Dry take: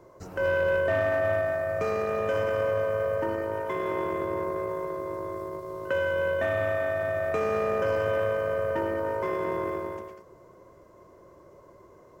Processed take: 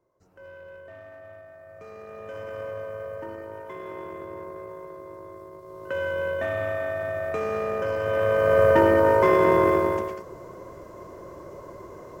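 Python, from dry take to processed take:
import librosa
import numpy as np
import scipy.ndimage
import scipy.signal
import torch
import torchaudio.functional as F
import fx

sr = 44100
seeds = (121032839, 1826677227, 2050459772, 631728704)

y = fx.gain(x, sr, db=fx.line((1.49, -20.0), (2.6, -8.0), (5.55, -8.0), (6.04, -1.0), (7.99, -1.0), (8.62, 11.0)))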